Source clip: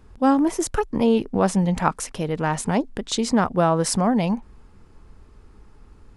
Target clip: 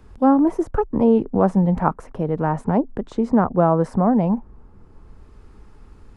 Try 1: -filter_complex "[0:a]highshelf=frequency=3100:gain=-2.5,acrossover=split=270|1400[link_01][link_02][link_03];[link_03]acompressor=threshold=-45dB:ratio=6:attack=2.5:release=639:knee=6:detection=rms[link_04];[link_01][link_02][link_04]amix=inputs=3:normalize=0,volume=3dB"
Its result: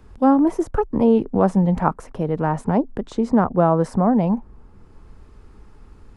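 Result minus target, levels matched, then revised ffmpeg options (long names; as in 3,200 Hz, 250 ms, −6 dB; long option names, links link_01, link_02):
downward compressor: peak gain reduction −6 dB
-filter_complex "[0:a]highshelf=frequency=3100:gain=-2.5,acrossover=split=270|1400[link_01][link_02][link_03];[link_03]acompressor=threshold=-52dB:ratio=6:attack=2.5:release=639:knee=6:detection=rms[link_04];[link_01][link_02][link_04]amix=inputs=3:normalize=0,volume=3dB"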